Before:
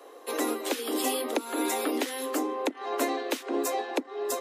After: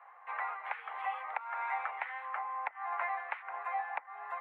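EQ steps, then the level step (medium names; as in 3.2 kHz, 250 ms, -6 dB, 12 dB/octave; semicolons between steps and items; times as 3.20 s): elliptic band-pass 800–2200 Hz, stop band 50 dB; 0.0 dB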